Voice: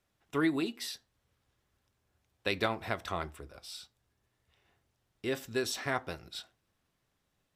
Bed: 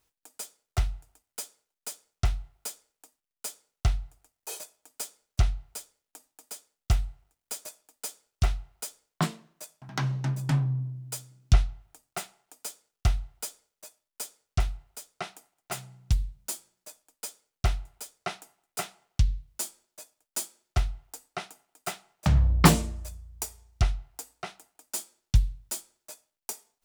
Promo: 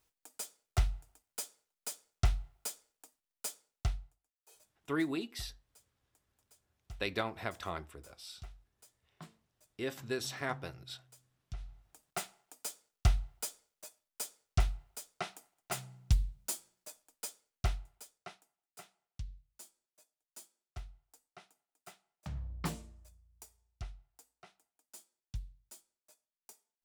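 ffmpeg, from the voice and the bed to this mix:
-filter_complex "[0:a]adelay=4550,volume=0.631[s0];[1:a]volume=8.41,afade=t=out:st=3.47:d=0.76:silence=0.0841395,afade=t=in:st=11.57:d=0.57:silence=0.0841395,afade=t=out:st=17.07:d=1.36:silence=0.141254[s1];[s0][s1]amix=inputs=2:normalize=0"

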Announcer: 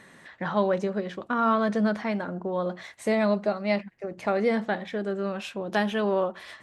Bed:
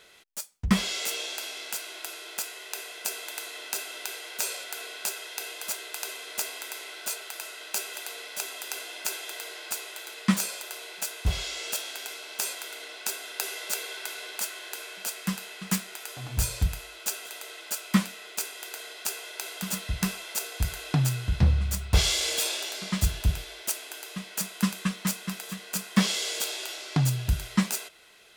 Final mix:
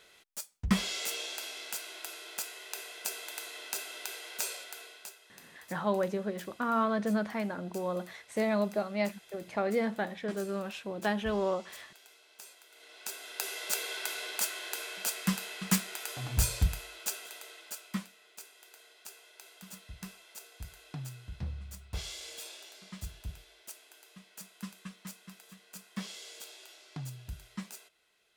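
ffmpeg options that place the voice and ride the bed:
-filter_complex "[0:a]adelay=5300,volume=0.531[s0];[1:a]volume=5.96,afade=t=out:st=4.41:d=0.77:silence=0.16788,afade=t=in:st=12.7:d=1.27:silence=0.1,afade=t=out:st=16.24:d=1.87:silence=0.141254[s1];[s0][s1]amix=inputs=2:normalize=0"

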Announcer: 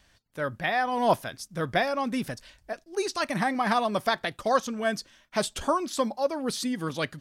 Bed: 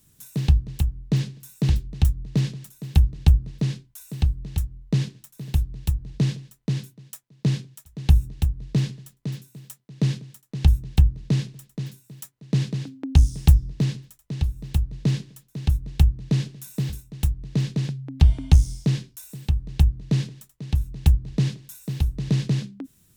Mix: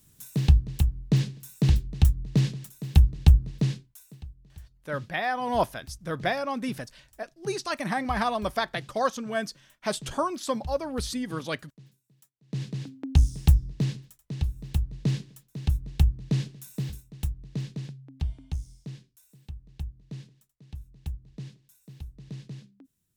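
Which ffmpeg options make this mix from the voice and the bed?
-filter_complex "[0:a]adelay=4500,volume=0.794[s0];[1:a]volume=6.68,afade=t=out:st=3.6:d=0.62:silence=0.0944061,afade=t=in:st=12.39:d=0.46:silence=0.141254,afade=t=out:st=16.41:d=2.07:silence=0.199526[s1];[s0][s1]amix=inputs=2:normalize=0"

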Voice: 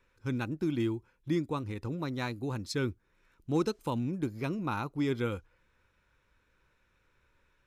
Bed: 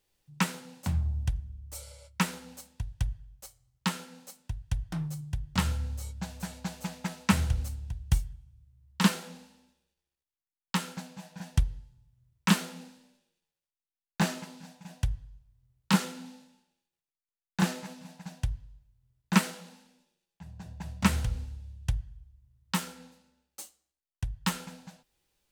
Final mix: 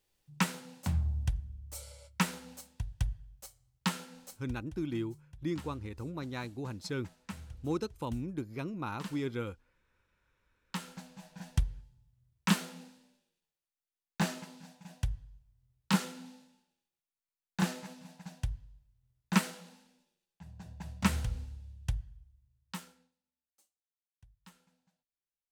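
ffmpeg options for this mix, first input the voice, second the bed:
-filter_complex "[0:a]adelay=4150,volume=0.596[s0];[1:a]volume=4.73,afade=t=out:st=4.29:d=0.41:silence=0.133352,afade=t=in:st=10.11:d=1.36:silence=0.16788,afade=t=out:st=22.06:d=1.06:silence=0.0630957[s1];[s0][s1]amix=inputs=2:normalize=0"

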